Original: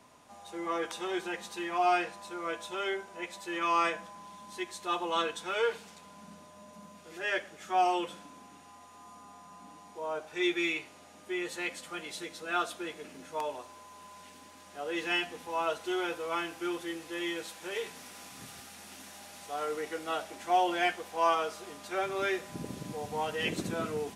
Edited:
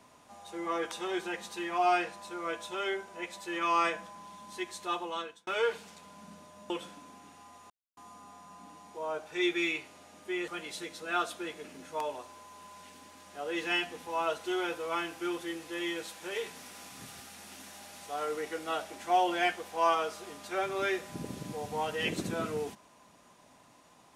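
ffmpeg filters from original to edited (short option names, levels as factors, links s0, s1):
-filter_complex "[0:a]asplit=5[s0][s1][s2][s3][s4];[s0]atrim=end=5.47,asetpts=PTS-STARTPTS,afade=t=out:st=4.82:d=0.65[s5];[s1]atrim=start=5.47:end=6.702,asetpts=PTS-STARTPTS,afade=t=in:d=0.004:c=hsin[s6];[s2]atrim=start=7.978:end=8.98,asetpts=PTS-STARTPTS,afade=t=out:st=0.998:d=0.004:c=hsin,apad=pad_dur=0.27[s7];[s3]atrim=start=8.98:end=11.492,asetpts=PTS-STARTPTS,afade=t=in:d=0.004:c=hsin[s8];[s4]atrim=start=11.878[s9];[s5][s6]concat=n=2:v=0:a=1[s10];[s7][s8]concat=n=2:v=0:a=1[s11];[s10][s11]acrossfade=d=0.004:c1=hsin:c2=hsin[s12];[s12][s9]acrossfade=d=0.004:c1=hsin:c2=hsin"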